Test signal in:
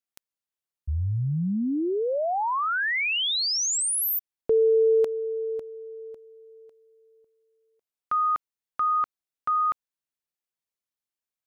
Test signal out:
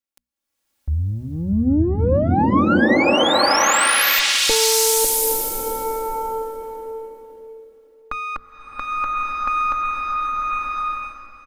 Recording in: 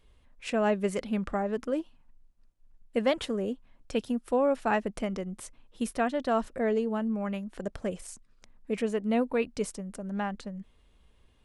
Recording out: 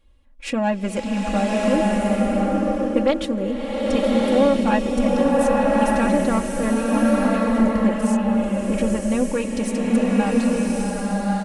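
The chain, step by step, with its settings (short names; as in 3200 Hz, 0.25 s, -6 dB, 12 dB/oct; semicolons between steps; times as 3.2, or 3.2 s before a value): one diode to ground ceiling -21.5 dBFS; notches 60/120/180/240 Hz; gate -54 dBFS, range -9 dB; low shelf 450 Hz +4.5 dB; comb 3.6 ms, depth 86%; in parallel at +0.5 dB: compressor, threshold -33 dBFS; on the sum: bloom reverb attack 1.2 s, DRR -4 dB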